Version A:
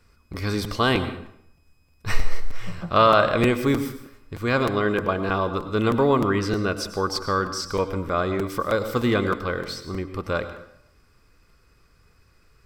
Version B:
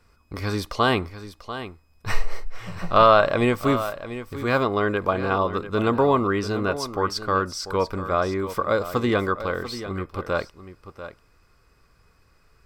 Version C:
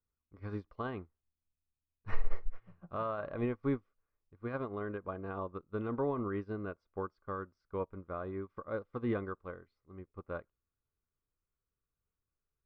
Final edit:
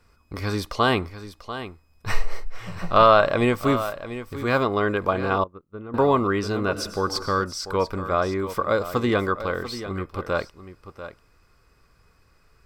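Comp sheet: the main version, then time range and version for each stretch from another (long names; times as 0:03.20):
B
0:05.44–0:05.94: punch in from C
0:06.73–0:07.44: punch in from A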